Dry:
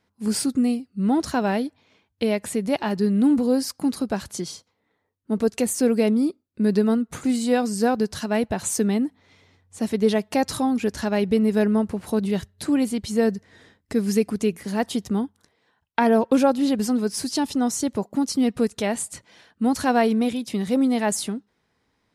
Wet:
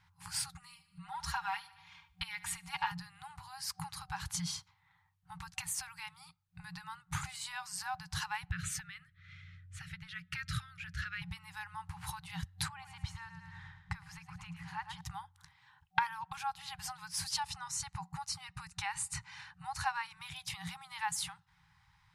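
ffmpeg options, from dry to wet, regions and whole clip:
ffmpeg -i in.wav -filter_complex "[0:a]asettb=1/sr,asplit=3[link_01][link_02][link_03];[link_01]atrim=end=0.524[link_04];[link_02]atrim=start=0.52:end=2.92,asetpts=PTS-STARTPTS,afade=type=in:duration=0.004:curve=qsin,afade=type=out:start_time=2.396:duration=0.004:curve=qsin,aecho=1:1:4.3:0.94,atrim=end_sample=105840,aecho=1:1:74|148|222|296:0.106|0.0508|0.0244|0.0117,atrim=end_sample=105840[link_05];[link_03]atrim=start=2.916[link_06];[link_04][link_05]acrossfade=duration=0.004:curve1=hsin:curve2=qsin[link_07];[link_07][link_06]acrossfade=duration=0.004:curve1=qsin:curve2=hsin,asettb=1/sr,asplit=3[link_08][link_09][link_10];[link_08]atrim=end=8.514[link_11];[link_09]atrim=start=8.51:end=11.22,asetpts=PTS-STARTPTS,afade=type=in:duration=0.004:curve=qsin,afade=type=out:start_time=2.706:duration=0.004:curve=qsin,asuperstop=centerf=780:order=12:qfactor=1,bass=frequency=250:gain=1,treble=frequency=4000:gain=-12[link_12];[link_10]atrim=start=11.216[link_13];[link_11][link_12]acrossfade=duration=0.004:curve1=hsin:curve2=qsin[link_14];[link_14][link_13]acrossfade=duration=0.004:curve1=qsin:curve2=hsin,asettb=1/sr,asplit=3[link_15][link_16][link_17];[link_15]atrim=end=12.684[link_18];[link_16]atrim=start=12.68:end=15.01,asetpts=PTS-STARTPTS,afade=type=in:duration=0.004:curve=qsin,afade=type=out:start_time=2.326:duration=0.004:curve=qsin,lowpass=frequency=1400:poles=1,aecho=1:1:108|216|324|432|540:0.316|0.152|0.0729|0.035|0.0168,atrim=end_sample=102753[link_19];[link_17]atrim=start=15.006[link_20];[link_18][link_19]acrossfade=duration=0.004:curve1=hsin:curve2=qsin[link_21];[link_21][link_20]acrossfade=duration=0.004:curve1=qsin:curve2=hsin,asettb=1/sr,asplit=3[link_22][link_23][link_24];[link_22]atrim=end=17.404[link_25];[link_23]atrim=start=17.4:end=20.17,asetpts=PTS-STARTPTS,afade=type=in:duration=0.004:curve=qsin,afade=type=out:start_time=2.766:duration=0.004:curve=qsin,lowpass=frequency=11000:width=0.5412,lowpass=frequency=11000:width=1.3066,bandreject=frequency=3300:width=7.4[link_26];[link_24]atrim=start=20.166[link_27];[link_25][link_26]acrossfade=duration=0.004:curve1=hsin:curve2=qsin[link_28];[link_28][link_27]acrossfade=duration=0.004:curve1=qsin:curve2=hsin,acompressor=threshold=-32dB:ratio=4,bass=frequency=250:gain=3,treble=frequency=4000:gain=-5,afftfilt=real='re*(1-between(b*sr/4096,180,760))':imag='im*(1-between(b*sr/4096,180,760))':win_size=4096:overlap=0.75,volume=4dB" out.wav

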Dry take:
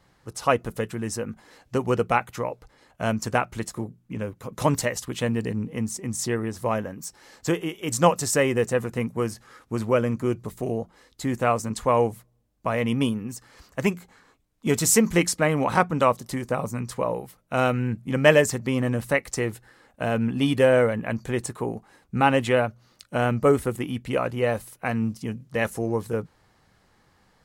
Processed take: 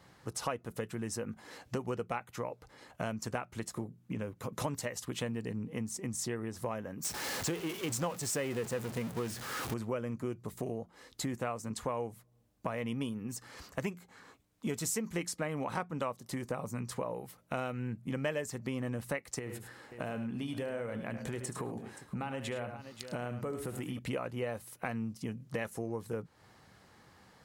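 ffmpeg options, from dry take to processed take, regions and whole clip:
ffmpeg -i in.wav -filter_complex "[0:a]asettb=1/sr,asplit=3[link_01][link_02][link_03];[link_01]atrim=end=7.044[link_04];[link_02]atrim=start=7.04:end=9.74,asetpts=PTS-STARTPTS,afade=type=in:duration=0.004:curve=qsin,afade=type=out:start_time=2.696:duration=0.004:curve=qsin,aeval=exprs='val(0)+0.5*0.0596*sgn(val(0))':channel_layout=same,highpass=41,agate=range=-33dB:threshold=-26dB:ratio=3:release=100:detection=peak[link_05];[link_03]atrim=start=9.736[link_06];[link_04][link_05]acrossfade=duration=0.004:curve1=hsin:curve2=qsin[link_07];[link_07][link_06]acrossfade=duration=0.004:curve1=qsin:curve2=hsin,asettb=1/sr,asplit=3[link_08][link_09][link_10];[link_08]atrim=end=19.394[link_11];[link_09]atrim=start=19.39:end=23.99,asetpts=PTS-STARTPTS,afade=type=in:duration=0.004:curve=qsin,afade=type=out:start_time=4.596:duration=0.004:curve=qsin,acompressor=threshold=-32dB:ratio=3:attack=3.2:release=140:knee=1:detection=peak,aecho=1:1:74|105|525:0.266|0.266|0.119,atrim=end_sample=202860[link_12];[link_10]atrim=start=23.986[link_13];[link_11][link_12]acrossfade=duration=0.004:curve1=hsin:curve2=qsin[link_14];[link_14][link_13]acrossfade=duration=0.004:curve1=qsin:curve2=hsin,highpass=72,acompressor=threshold=-38dB:ratio=4,volume=2dB" out.wav

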